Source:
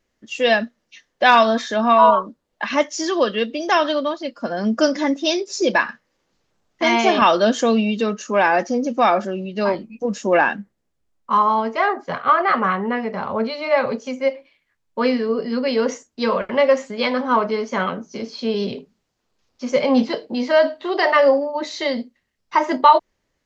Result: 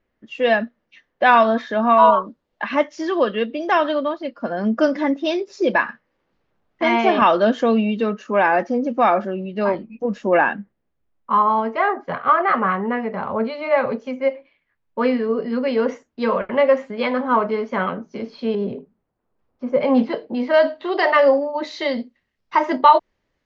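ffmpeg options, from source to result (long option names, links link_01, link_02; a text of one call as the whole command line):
ffmpeg -i in.wav -af "asetnsamples=nb_out_samples=441:pad=0,asendcmd='1.98 lowpass f 4200;2.62 lowpass f 2500;18.55 lowpass f 1200;19.81 lowpass f 2300;20.54 lowpass f 4100',lowpass=2300" out.wav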